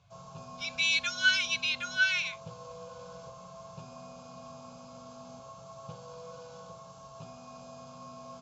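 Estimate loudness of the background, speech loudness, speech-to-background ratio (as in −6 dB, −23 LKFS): −47.5 LKFS, −27.5 LKFS, 20.0 dB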